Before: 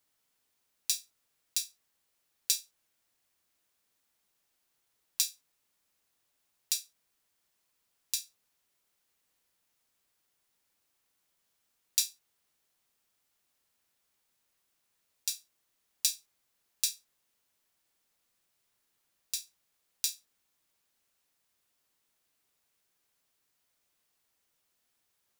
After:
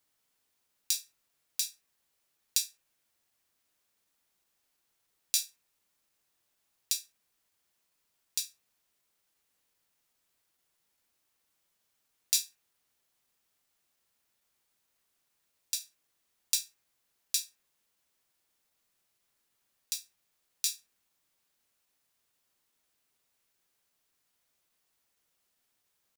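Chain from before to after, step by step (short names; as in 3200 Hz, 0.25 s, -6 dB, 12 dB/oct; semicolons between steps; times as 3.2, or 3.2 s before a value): analogue delay 61 ms, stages 1024, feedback 45%, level -21.5 dB; tempo 0.97×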